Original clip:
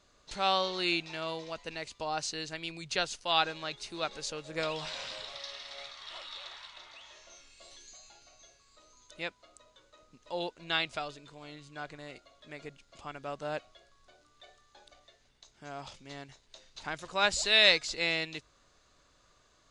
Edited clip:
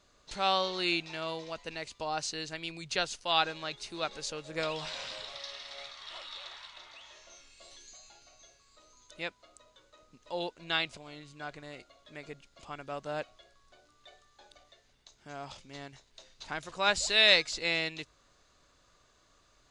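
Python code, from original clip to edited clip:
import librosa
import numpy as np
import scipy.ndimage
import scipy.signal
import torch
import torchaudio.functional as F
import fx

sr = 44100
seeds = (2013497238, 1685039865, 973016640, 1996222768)

y = fx.edit(x, sr, fx.cut(start_s=10.97, length_s=0.36), tone=tone)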